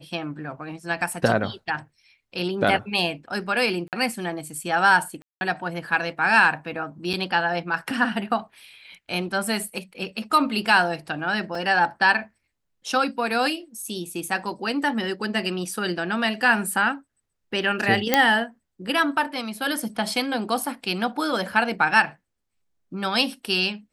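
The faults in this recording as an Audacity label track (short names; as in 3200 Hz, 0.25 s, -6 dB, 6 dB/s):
3.880000	3.930000	gap 48 ms
5.220000	5.410000	gap 0.19 s
7.130000	7.140000	gap 5.8 ms
11.550000	11.550000	gap 2.9 ms
18.140000	18.140000	pop -1 dBFS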